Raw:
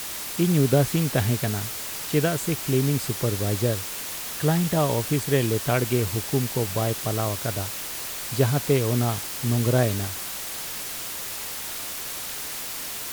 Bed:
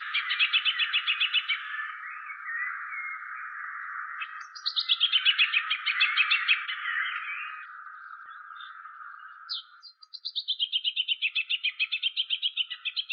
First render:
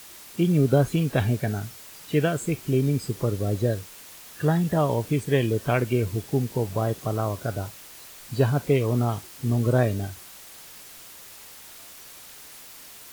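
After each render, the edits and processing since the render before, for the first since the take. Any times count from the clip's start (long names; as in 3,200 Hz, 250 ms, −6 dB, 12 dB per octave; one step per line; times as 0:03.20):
noise reduction from a noise print 12 dB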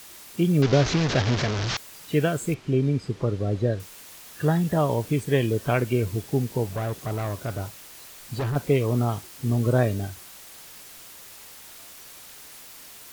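0:00.62–0:01.77: linear delta modulator 32 kbit/s, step −20 dBFS
0:02.54–0:03.80: Bessel low-pass filter 3,600 Hz
0:06.76–0:08.56: hard clipping −24.5 dBFS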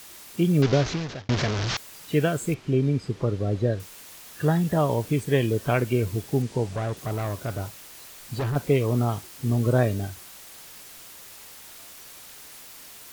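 0:00.64–0:01.29: fade out
0:06.42–0:06.97: Savitzky-Golay smoothing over 9 samples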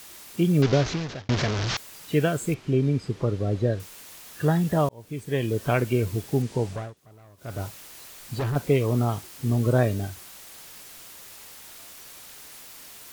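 0:04.89–0:05.66: fade in
0:06.70–0:07.61: duck −22.5 dB, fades 0.24 s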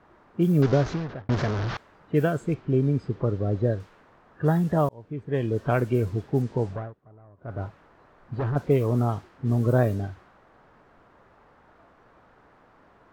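low-pass that shuts in the quiet parts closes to 1,200 Hz, open at −17.5 dBFS
flat-topped bell 5,000 Hz −9 dB 2.8 octaves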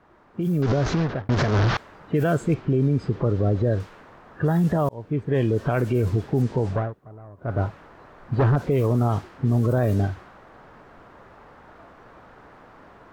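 brickwall limiter −22.5 dBFS, peak gain reduction 11.5 dB
automatic gain control gain up to 8.5 dB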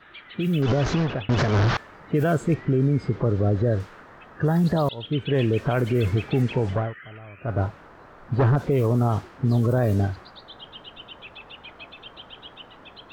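mix in bed −15.5 dB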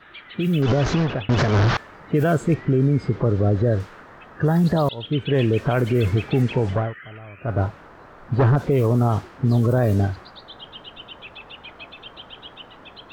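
level +2.5 dB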